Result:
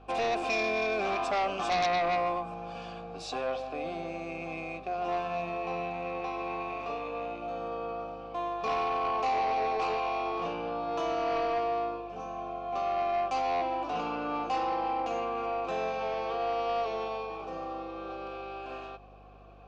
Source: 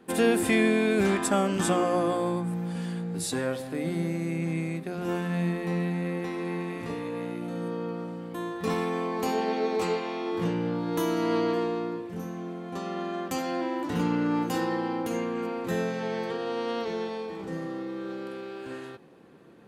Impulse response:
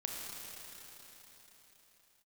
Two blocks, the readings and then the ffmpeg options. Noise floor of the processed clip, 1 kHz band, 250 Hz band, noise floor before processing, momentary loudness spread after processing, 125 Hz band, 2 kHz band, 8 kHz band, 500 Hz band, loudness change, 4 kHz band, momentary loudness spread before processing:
-43 dBFS, +4.5 dB, -13.0 dB, -40 dBFS, 10 LU, -15.5 dB, -2.5 dB, under -10 dB, -3.0 dB, -3.0 dB, -2.0 dB, 11 LU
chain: -filter_complex "[0:a]equalizer=f=120:w=0.42:g=-4,asplit=2[s0][s1];[s1]alimiter=limit=0.0708:level=0:latency=1,volume=0.708[s2];[s0][s2]amix=inputs=2:normalize=0,asplit=3[s3][s4][s5];[s3]bandpass=f=730:t=q:w=8,volume=1[s6];[s4]bandpass=f=1090:t=q:w=8,volume=0.501[s7];[s5]bandpass=f=2440:t=q:w=8,volume=0.355[s8];[s6][s7][s8]amix=inputs=3:normalize=0,aeval=exprs='0.0794*(cos(1*acos(clip(val(0)/0.0794,-1,1)))-cos(1*PI/2))+0.0282*(cos(5*acos(clip(val(0)/0.0794,-1,1)))-cos(5*PI/2))':c=same,lowpass=f=5700:t=q:w=2.6,aeval=exprs='val(0)+0.002*(sin(2*PI*50*n/s)+sin(2*PI*2*50*n/s)/2+sin(2*PI*3*50*n/s)/3+sin(2*PI*4*50*n/s)/4+sin(2*PI*5*50*n/s)/5)':c=same"

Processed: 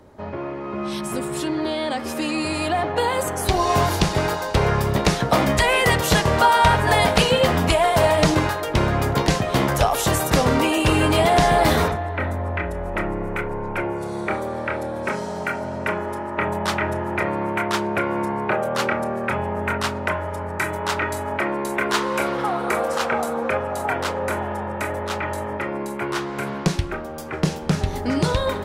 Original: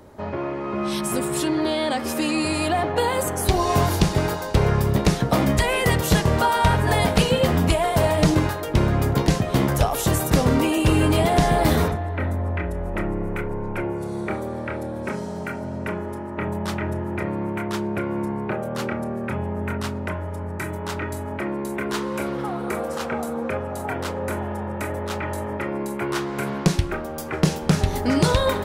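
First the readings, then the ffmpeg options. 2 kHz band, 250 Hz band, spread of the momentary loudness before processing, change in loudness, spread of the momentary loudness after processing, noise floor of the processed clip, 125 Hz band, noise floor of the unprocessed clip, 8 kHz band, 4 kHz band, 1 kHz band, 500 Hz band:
+5.0 dB, -1.5 dB, 10 LU, +1.5 dB, 10 LU, -30 dBFS, -2.0 dB, -31 dBFS, +1.0 dB, +3.5 dB, +4.5 dB, +2.0 dB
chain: -filter_complex "[0:a]highshelf=f=9400:g=-7.5,acrossover=split=500[s0][s1];[s1]dynaudnorm=f=630:g=11:m=3.55[s2];[s0][s2]amix=inputs=2:normalize=0,volume=0.794"

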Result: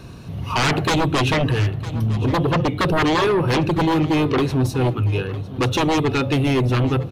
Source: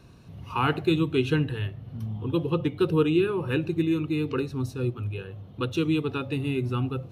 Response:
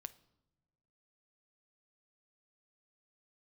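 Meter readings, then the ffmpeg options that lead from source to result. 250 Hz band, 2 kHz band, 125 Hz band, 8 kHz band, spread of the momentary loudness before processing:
+5.5 dB, +10.5 dB, +8.5 dB, no reading, 10 LU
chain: -af "aeval=exprs='0.316*sin(PI/2*5.01*val(0)/0.316)':c=same,aecho=1:1:956:0.15,volume=0.596"

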